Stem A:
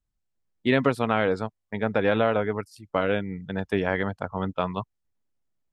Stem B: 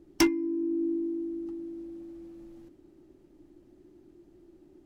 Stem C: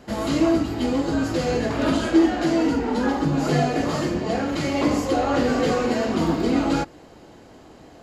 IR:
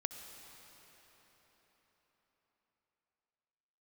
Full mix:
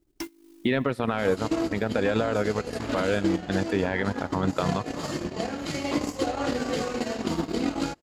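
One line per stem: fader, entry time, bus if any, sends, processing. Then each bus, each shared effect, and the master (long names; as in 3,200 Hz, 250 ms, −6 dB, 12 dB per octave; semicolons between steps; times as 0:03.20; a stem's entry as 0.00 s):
+2.5 dB, 0.00 s, send −5.5 dB, brickwall limiter −15 dBFS, peak gain reduction 7.5 dB
−16.0 dB, 0.00 s, no send, noise that follows the level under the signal 13 dB; automatic ducking −14 dB, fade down 1.40 s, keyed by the first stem
−8.0 dB, 1.10 s, no send, phase distortion by the signal itself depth 0.065 ms; high-shelf EQ 3,000 Hz +8 dB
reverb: on, RT60 4.9 s, pre-delay 59 ms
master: transient designer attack +7 dB, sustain −12 dB; brickwall limiter −13.5 dBFS, peak gain reduction 12 dB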